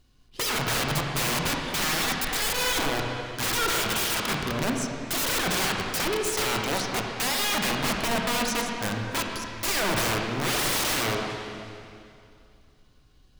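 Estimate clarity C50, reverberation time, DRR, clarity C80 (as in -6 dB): 1.5 dB, 2.5 s, 0.5 dB, 2.5 dB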